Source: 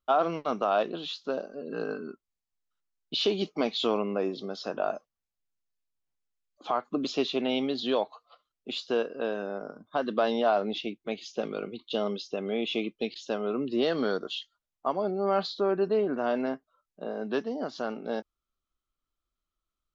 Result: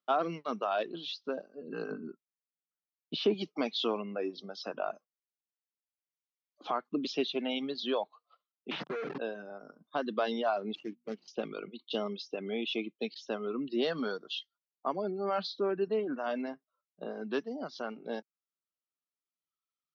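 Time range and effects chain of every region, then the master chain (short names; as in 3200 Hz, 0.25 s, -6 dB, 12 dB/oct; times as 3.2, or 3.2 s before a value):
1.91–3.34 LPF 2300 Hz 6 dB/oct + low shelf 260 Hz +8 dB
8.71–9.18 Schmitt trigger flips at -42 dBFS + polynomial smoothing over 25 samples + Doppler distortion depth 0.6 ms
10.75–11.28 median filter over 25 samples + notches 60/120/180/240 Hz
whole clip: Chebyshev band-pass 150–5800 Hz, order 4; reverb removal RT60 1.7 s; dynamic EQ 600 Hz, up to -3 dB, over -40 dBFS, Q 1.2; gain -1.5 dB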